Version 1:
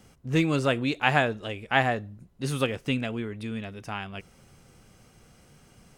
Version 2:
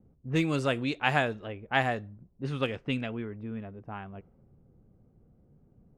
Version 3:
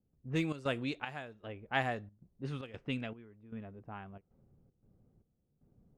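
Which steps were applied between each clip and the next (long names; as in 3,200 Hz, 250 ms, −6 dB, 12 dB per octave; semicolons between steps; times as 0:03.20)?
low-pass that shuts in the quiet parts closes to 380 Hz, open at −20.5 dBFS; level −3.5 dB
gate pattern ".xxx.xxx...xxxxx" 115 BPM −12 dB; level −6 dB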